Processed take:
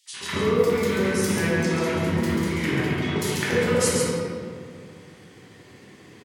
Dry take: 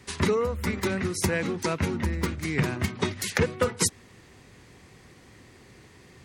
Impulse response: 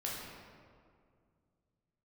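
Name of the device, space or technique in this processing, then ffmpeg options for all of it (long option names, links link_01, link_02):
PA in a hall: -filter_complex "[0:a]asettb=1/sr,asplit=3[link_01][link_02][link_03];[link_01]atrim=end=2.674[link_04];[link_02]atrim=start=2.67:end=3.17,asetpts=PTS-STARTPTS,afade=type=in:duration=0.004:curve=qsin,afade=type=out:start_time=0.496:duration=0.004:curve=qsin,bass=frequency=250:gain=-4,treble=frequency=4000:gain=-10[link_05];[link_03]atrim=start=3.166[link_06];[link_04][link_05]acrossfade=duration=0.004:curve1=hsin:curve2=qsin[link_07];[link_07][link_06]acrossfade=duration=0.004:curve1=qsin:curve2=hsin,highpass=150,equalizer=frequency=3200:width_type=o:width=0.35:gain=7,aecho=1:1:138:0.562[link_08];[1:a]atrim=start_sample=2205[link_09];[link_08][link_09]afir=irnorm=-1:irlink=0,acrossover=split=1000|3500[link_10][link_11][link_12];[link_11]adelay=60[link_13];[link_10]adelay=130[link_14];[link_14][link_13][link_12]amix=inputs=3:normalize=0,volume=1.5dB"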